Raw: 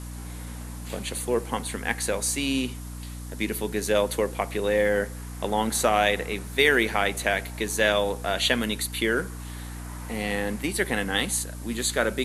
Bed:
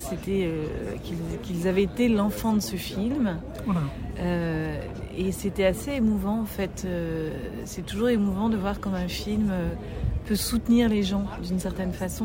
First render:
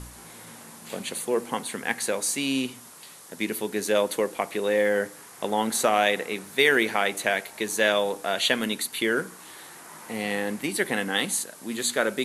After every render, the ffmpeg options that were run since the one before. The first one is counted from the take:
-af "bandreject=f=60:t=h:w=4,bandreject=f=120:t=h:w=4,bandreject=f=180:t=h:w=4,bandreject=f=240:t=h:w=4,bandreject=f=300:t=h:w=4"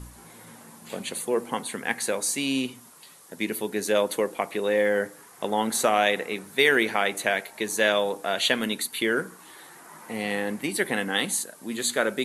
-af "afftdn=nr=6:nf=-47"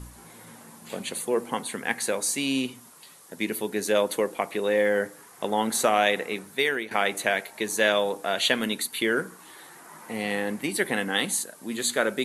-filter_complex "[0:a]asplit=2[a][b];[a]atrim=end=6.91,asetpts=PTS-STARTPTS,afade=t=out:st=6.37:d=0.54:silence=0.188365[c];[b]atrim=start=6.91,asetpts=PTS-STARTPTS,afade=t=in:d=0.004:c=hsin:silence=0.188365[d];[c][d]concat=n=2:v=0:a=1"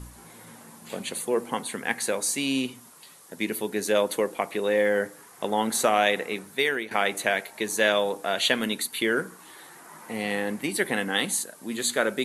-af anull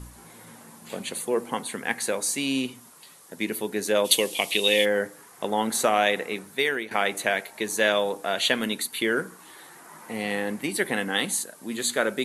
-filter_complex "[0:a]asplit=3[a][b][c];[a]afade=t=out:st=4.04:d=0.02[d];[b]highshelf=f=2.1k:t=q:w=3:g=12.5,afade=t=in:st=4.04:d=0.02,afade=t=out:st=4.84:d=0.02[e];[c]afade=t=in:st=4.84:d=0.02[f];[d][e][f]amix=inputs=3:normalize=0"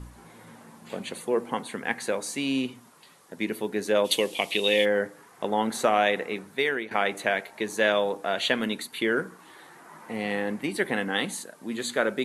-af "lowpass=f=3k:p=1"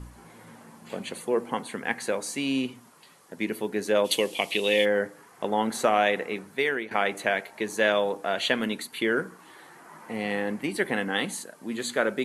-af "bandreject=f=3.7k:w=19"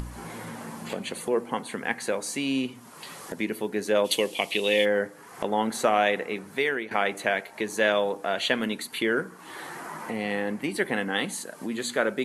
-af "acompressor=mode=upward:threshold=-27dB:ratio=2.5"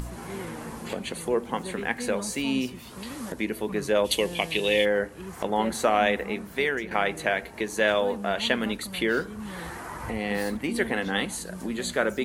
-filter_complex "[1:a]volume=-13dB[a];[0:a][a]amix=inputs=2:normalize=0"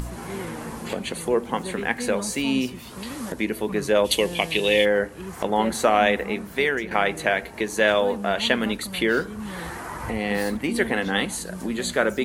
-af "volume=3.5dB"

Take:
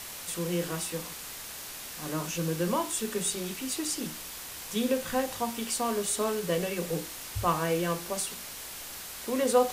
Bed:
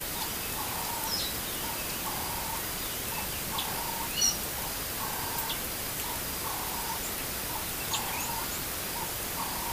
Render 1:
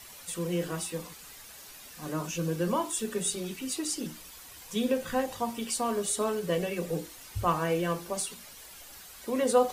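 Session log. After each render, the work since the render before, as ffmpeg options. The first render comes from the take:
-af "afftdn=nr=10:nf=-42"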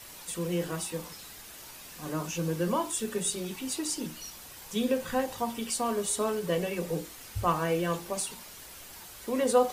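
-filter_complex "[1:a]volume=-18.5dB[a];[0:a][a]amix=inputs=2:normalize=0"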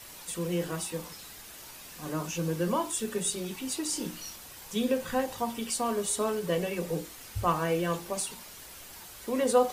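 -filter_complex "[0:a]asettb=1/sr,asplit=3[a][b][c];[a]atrim=end=3.904[d];[b]atrim=start=3.9:end=4.36,asetpts=PTS-STARTPTS,afade=t=in:d=0.004:c=qsin,afade=t=out:st=0.456:d=0.004:c=qsin,asplit=2[e][f];[f]adelay=29,volume=-4.5dB[g];[e][g]amix=inputs=2:normalize=0,atrim=end_sample=20286[h];[c]atrim=start=4.356[i];[d][h]acrossfade=d=0.004:c1=hsin:c2=qsin[j];[j][i]acrossfade=d=0.004:c1=qsin:c2=hsin"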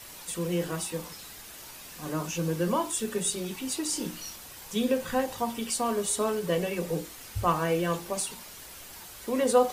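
-af "volume=1.5dB"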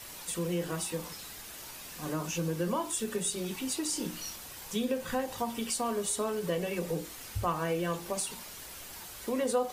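-af "acompressor=threshold=-31dB:ratio=2"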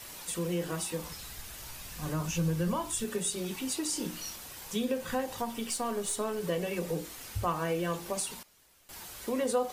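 -filter_complex "[0:a]asplit=3[a][b][c];[a]afade=t=out:st=1.03:d=0.02[d];[b]asubboost=boost=7.5:cutoff=130,afade=t=in:st=1.03:d=0.02,afade=t=out:st=3.03:d=0.02[e];[c]afade=t=in:st=3.03:d=0.02[f];[d][e][f]amix=inputs=3:normalize=0,asettb=1/sr,asplit=3[g][h][i];[g]atrim=end=5.414[j];[h]atrim=start=5.41:end=6.4,asetpts=PTS-STARTPTS,afade=t=in:d=0.004:c=qsin,afade=t=out:st=0.986:d=0.004:c=qsin,aeval=exprs='if(lt(val(0),0),0.708*val(0),val(0))':c=same[k];[i]atrim=start=6.396[l];[j][k]acrossfade=d=0.004:c1=hsin:c2=qsin[m];[m][l]acrossfade=d=0.004:c1=qsin:c2=hsin,asplit=3[n][o][p];[n]atrim=end=8.43,asetpts=PTS-STARTPTS,afade=t=out:st=8.24:d=0.19:c=log:silence=0.125893[q];[o]atrim=start=8.43:end=8.89,asetpts=PTS-STARTPTS,volume=-18dB[r];[p]atrim=start=8.89,asetpts=PTS-STARTPTS,afade=t=in:d=0.19:c=log:silence=0.125893[s];[q][r][s]concat=n=3:v=0:a=1"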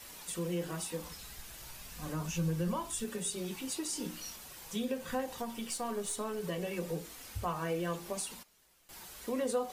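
-af "flanger=delay=3.6:depth=2.6:regen=-52:speed=0.96:shape=triangular"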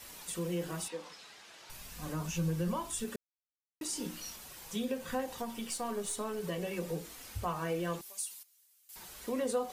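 -filter_complex "[0:a]asettb=1/sr,asplit=3[a][b][c];[a]atrim=end=0.884[d];[b]atrim=start=0.88:end=1.7,asetpts=PTS-STARTPTS,afade=t=in:d=0.004:c=qsin,afade=t=out:st=0.816:d=0.004:c=qsin,highpass=340,lowpass=5k[e];[c]atrim=start=1.696[f];[d][e]acrossfade=d=0.004:c1=hsin:c2=qsin[g];[g][f]acrossfade=d=0.004:c1=qsin:c2=hsin,asettb=1/sr,asplit=3[h][i][j];[h]atrim=end=8.014[k];[i]atrim=start=8.01:end=8.96,asetpts=PTS-STARTPTS,afade=t=in:d=0.004:c=qsin,afade=t=out:st=0.946:d=0.004:c=qsin,aderivative[l];[j]atrim=start=8.956[m];[k][l]acrossfade=d=0.004:c1=hsin:c2=qsin[n];[n][m]acrossfade=d=0.004:c1=qsin:c2=hsin,asplit=3[o][p][q];[o]atrim=end=3.16,asetpts=PTS-STARTPTS,afade=t=out:st=3.156:d=0.004:c=hsin[r];[p]atrim=start=3.16:end=3.81,asetpts=PTS-STARTPTS,volume=0[s];[q]atrim=start=3.81,asetpts=PTS-STARTPTS,afade=t=in:d=0.004:c=hsin[t];[r][s][t]concat=n=3:v=0:a=1"

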